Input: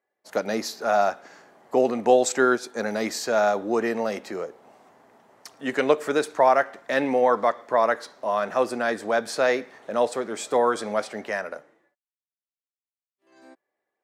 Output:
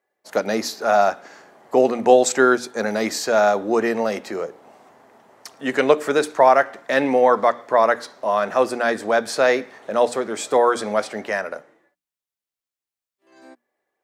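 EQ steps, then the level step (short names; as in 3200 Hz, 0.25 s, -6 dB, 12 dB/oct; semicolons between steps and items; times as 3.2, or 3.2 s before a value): notches 60/120/180/240/300 Hz; +4.5 dB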